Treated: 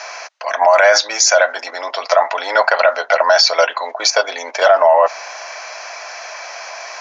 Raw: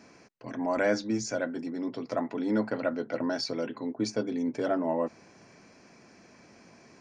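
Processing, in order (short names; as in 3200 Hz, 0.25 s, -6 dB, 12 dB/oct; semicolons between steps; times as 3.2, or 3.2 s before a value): Chebyshev band-pass 630–6500 Hz, order 4; in parallel at +1 dB: level quantiser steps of 21 dB; on the sum: maximiser +25 dB; gain -1 dB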